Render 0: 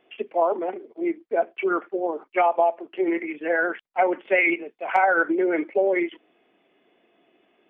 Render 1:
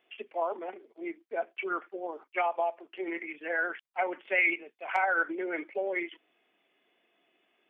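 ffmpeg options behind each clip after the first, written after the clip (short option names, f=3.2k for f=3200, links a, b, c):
-af "tiltshelf=f=890:g=-6,volume=-8.5dB"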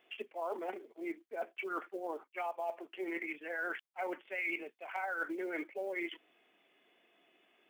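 -af "areverse,acompressor=threshold=-38dB:ratio=6,areverse,acrusher=bits=8:mode=log:mix=0:aa=0.000001,volume=2dB"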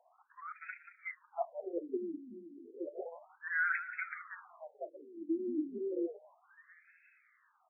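-filter_complex "[0:a]asplit=7[a][b][c][d][e][f][g];[b]adelay=183,afreqshift=-82,volume=-11dB[h];[c]adelay=366,afreqshift=-164,volume=-16.7dB[i];[d]adelay=549,afreqshift=-246,volume=-22.4dB[j];[e]adelay=732,afreqshift=-328,volume=-28dB[k];[f]adelay=915,afreqshift=-410,volume=-33.7dB[l];[g]adelay=1098,afreqshift=-492,volume=-39.4dB[m];[a][h][i][j][k][l][m]amix=inputs=7:normalize=0,afftfilt=real='re*between(b*sr/1024,250*pow(1900/250,0.5+0.5*sin(2*PI*0.32*pts/sr))/1.41,250*pow(1900/250,0.5+0.5*sin(2*PI*0.32*pts/sr))*1.41)':imag='im*between(b*sr/1024,250*pow(1900/250,0.5+0.5*sin(2*PI*0.32*pts/sr))/1.41,250*pow(1900/250,0.5+0.5*sin(2*PI*0.32*pts/sr))*1.41)':win_size=1024:overlap=0.75,volume=7dB"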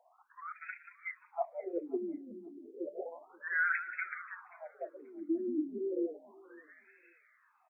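-af "aecho=1:1:532|1064:0.0794|0.0151,volume=1.5dB"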